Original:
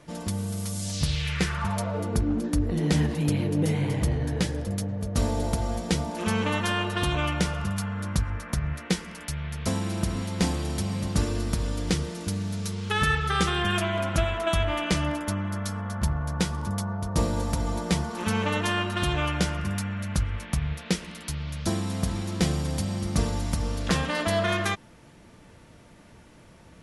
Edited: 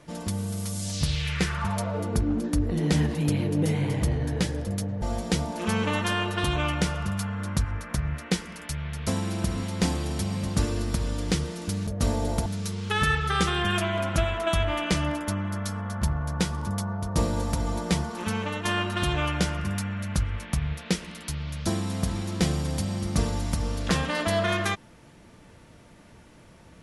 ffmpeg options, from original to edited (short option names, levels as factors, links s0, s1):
-filter_complex "[0:a]asplit=5[s0][s1][s2][s3][s4];[s0]atrim=end=5.022[s5];[s1]atrim=start=5.608:end=12.462[s6];[s2]atrim=start=5.018:end=5.612[s7];[s3]atrim=start=12.458:end=18.65,asetpts=PTS-STARTPTS,afade=t=out:st=5.542:d=0.65:silence=0.473151[s8];[s4]atrim=start=18.65,asetpts=PTS-STARTPTS,afade=t=in:d=0.004:c=hsin:silence=0.473151[s9];[s5][s6]acrossfade=d=0.004:c1=hsin:c2=hsin[s10];[s10][s7]acrossfade=d=0.004:c1=hsin:c2=hsin[s11];[s8][s9]concat=n=2:v=0:a=1[s12];[s11][s12]acrossfade=d=0.004:c1=hsin:c2=hsin"